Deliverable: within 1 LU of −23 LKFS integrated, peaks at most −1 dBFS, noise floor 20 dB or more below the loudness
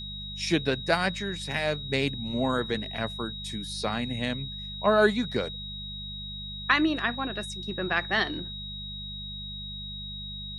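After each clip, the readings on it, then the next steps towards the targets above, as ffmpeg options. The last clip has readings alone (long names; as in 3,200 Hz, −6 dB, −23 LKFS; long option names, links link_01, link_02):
mains hum 50 Hz; hum harmonics up to 200 Hz; level of the hum −39 dBFS; interfering tone 3,800 Hz; level of the tone −37 dBFS; integrated loudness −29.0 LKFS; sample peak −7.0 dBFS; target loudness −23.0 LKFS
→ -af "bandreject=frequency=50:width_type=h:width=4,bandreject=frequency=100:width_type=h:width=4,bandreject=frequency=150:width_type=h:width=4,bandreject=frequency=200:width_type=h:width=4"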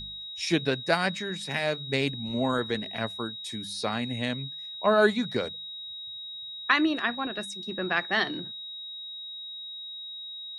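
mains hum none found; interfering tone 3,800 Hz; level of the tone −37 dBFS
→ -af "bandreject=frequency=3800:width=30"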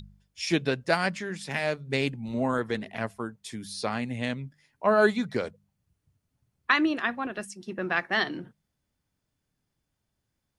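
interfering tone none found; integrated loudness −28.5 LKFS; sample peak −7.0 dBFS; target loudness −23.0 LKFS
→ -af "volume=5.5dB"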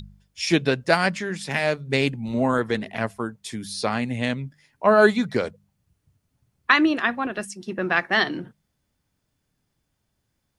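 integrated loudness −23.0 LKFS; sample peak −1.5 dBFS; background noise floor −76 dBFS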